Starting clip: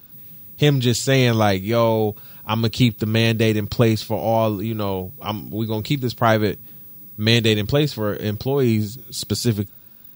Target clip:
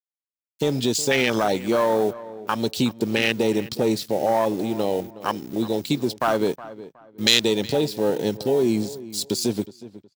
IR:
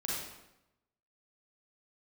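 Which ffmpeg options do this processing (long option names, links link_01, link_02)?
-filter_complex "[0:a]lowpass=7800,afwtdn=0.0891,highpass=250,acontrast=48,alimiter=limit=-11.5dB:level=0:latency=1:release=120,aeval=exprs='sgn(val(0))*max(abs(val(0))-0.00335,0)':channel_layout=same,crystalizer=i=7.5:c=0,asplit=2[link_01][link_02];[link_02]adelay=367,lowpass=frequency=2400:poles=1,volume=-16.5dB,asplit=2[link_03][link_04];[link_04]adelay=367,lowpass=frequency=2400:poles=1,volume=0.27,asplit=2[link_05][link_06];[link_06]adelay=367,lowpass=frequency=2400:poles=1,volume=0.27[link_07];[link_03][link_05][link_07]amix=inputs=3:normalize=0[link_08];[link_01][link_08]amix=inputs=2:normalize=0,volume=-2dB"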